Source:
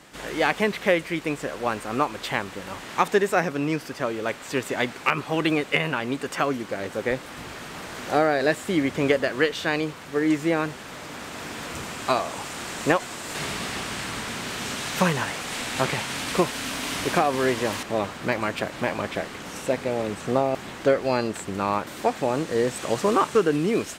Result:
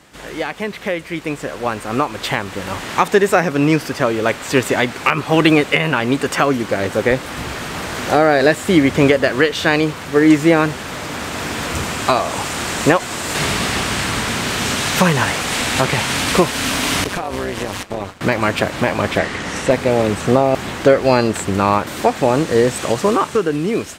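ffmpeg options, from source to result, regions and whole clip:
-filter_complex "[0:a]asettb=1/sr,asplit=3[s0][s1][s2];[s0]atrim=end=17.044[s3];[s1]atrim=start=17.04:end=18.21,asetpts=PTS-STARTPTS,afade=t=in:d=0.004:c=qsin,afade=t=out:st=1.166:d=0.004:c=qsin,agate=range=0.0224:threshold=0.0355:ratio=3:release=100:detection=peak,tremolo=f=190:d=0.788,acompressor=threshold=0.0355:ratio=10:attack=3.2:release=140:knee=1:detection=peak[s4];[s2]atrim=start=18.206[s5];[s3][s4]acrossfade=d=0.004:c1=hsin:c2=qsin[s6];[s6][s5]acrossfade=d=0.004:c1=qsin:c2=hsin,asettb=1/sr,asplit=3[s7][s8][s9];[s7]atrim=end=19.184[s10];[s8]atrim=start=19.18:end=19.71,asetpts=PTS-STARTPTS,afade=t=in:d=0.004:c=qsin,afade=t=out:st=0.526:d=0.004:c=qsin,lowpass=8300,equalizer=f=1900:t=o:w=0.23:g=7.5,aeval=exprs='clip(val(0),-1,0.112)':c=same[s11];[s9]atrim=start=19.706[s12];[s10][s11]acrossfade=d=0.004:c1=hsin:c2=qsin[s13];[s13][s12]acrossfade=d=0.004:c1=qsin:c2=hsin,equalizer=f=77:w=1.2:g=6,alimiter=limit=0.251:level=0:latency=1:release=245,dynaudnorm=f=570:g=7:m=3.76,volume=1.19"

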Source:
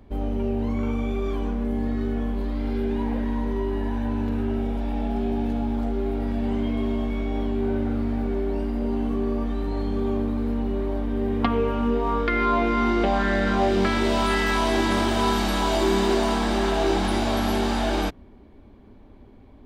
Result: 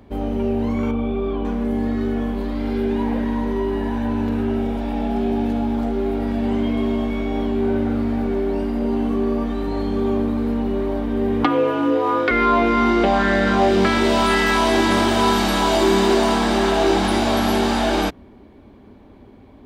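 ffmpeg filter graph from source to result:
-filter_complex "[0:a]asettb=1/sr,asplit=3[s0][s1][s2];[s0]atrim=end=0.914[s3];[s1]atrim=start=0.91:end=1.45,asetpts=PTS-STARTPTS,afade=t=in:d=0.004:c=qsin,afade=t=out:st=0.536:d=0.004:c=qsin,lowpass=f=3400:w=0.5412,lowpass=f=3400:w=1.3066,equalizer=f=1900:t=o:w=0.81:g=-9.5[s4];[s2]atrim=start=1.446[s5];[s3][s4]acrossfade=d=0.004:c1=hsin:c2=qsin[s6];[s6][s5]acrossfade=d=0.004:c1=qsin:c2=hsin,asettb=1/sr,asplit=3[s7][s8][s9];[s7]atrim=end=11.444[s10];[s8]atrim=start=11.44:end=12.31,asetpts=PTS-STARTPTS,afade=t=in:d=0.004:c=qsin,afade=t=out:st=0.866:d=0.004:c=qsin,highpass=140,afreqshift=49[s11];[s9]atrim=start=12.306[s12];[s10][s11]acrossfade=d=0.004:c1=hsin:c2=qsin[s13];[s13][s12]acrossfade=d=0.004:c1=qsin:c2=hsin,highpass=f=98:p=1,acontrast=48"

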